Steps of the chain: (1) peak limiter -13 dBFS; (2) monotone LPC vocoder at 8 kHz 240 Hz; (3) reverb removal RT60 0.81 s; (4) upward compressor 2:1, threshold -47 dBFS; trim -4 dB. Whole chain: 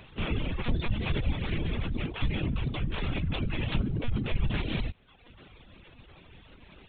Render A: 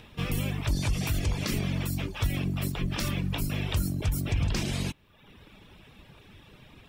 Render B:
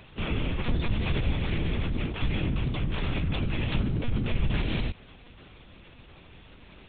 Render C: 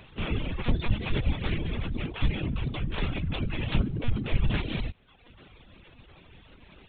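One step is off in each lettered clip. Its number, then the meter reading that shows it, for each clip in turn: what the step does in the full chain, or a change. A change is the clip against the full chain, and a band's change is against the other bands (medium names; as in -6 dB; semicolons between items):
2, 4 kHz band +2.0 dB; 3, loudness change +2.0 LU; 1, crest factor change +3.0 dB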